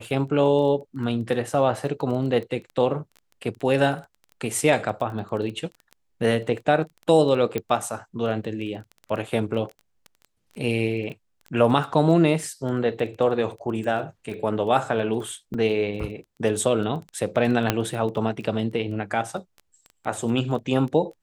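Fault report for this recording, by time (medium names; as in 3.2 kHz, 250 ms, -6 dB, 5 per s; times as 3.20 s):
crackle 12 per s -31 dBFS
7.58 s: pop -13 dBFS
15.54–15.55 s: dropout 5.1 ms
17.70 s: pop -4 dBFS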